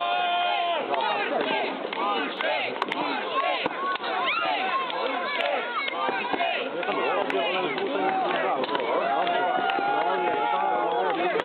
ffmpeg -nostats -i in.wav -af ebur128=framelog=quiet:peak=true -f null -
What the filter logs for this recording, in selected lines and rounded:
Integrated loudness:
  I:         -25.7 LUFS
  Threshold: -35.7 LUFS
Loudness range:
  LRA:         1.5 LU
  Threshold: -45.9 LUFS
  LRA low:   -26.4 LUFS
  LRA high:  -24.9 LUFS
True peak:
  Peak:      -11.4 dBFS